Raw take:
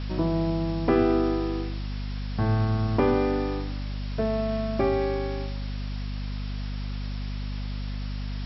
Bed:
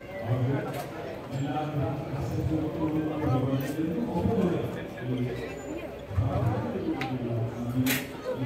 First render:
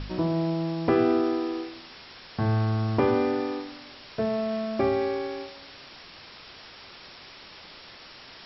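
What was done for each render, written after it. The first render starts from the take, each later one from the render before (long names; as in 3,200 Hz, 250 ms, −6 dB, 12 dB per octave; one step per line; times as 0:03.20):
hum removal 50 Hz, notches 5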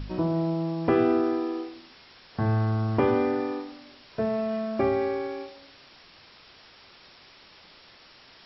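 noise reduction from a noise print 6 dB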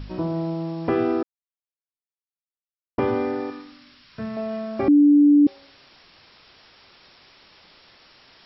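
0:01.23–0:02.98: silence
0:03.50–0:04.37: flat-topped bell 540 Hz −10.5 dB
0:04.88–0:05.47: beep over 291 Hz −10.5 dBFS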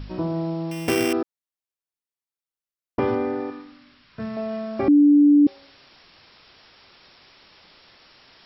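0:00.71–0:01.13: samples sorted by size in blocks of 16 samples
0:03.15–0:04.20: low-pass filter 2,500 Hz 6 dB per octave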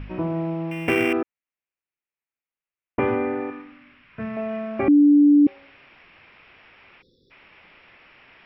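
0:07.02–0:07.31: time-frequency box erased 540–3,400 Hz
high shelf with overshoot 3,300 Hz −10.5 dB, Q 3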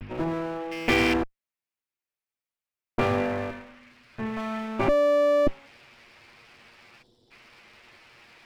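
lower of the sound and its delayed copy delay 8.5 ms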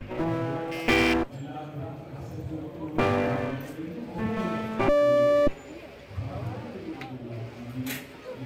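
mix in bed −7 dB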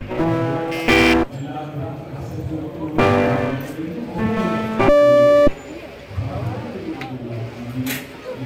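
level +9 dB
brickwall limiter −2 dBFS, peak gain reduction 2.5 dB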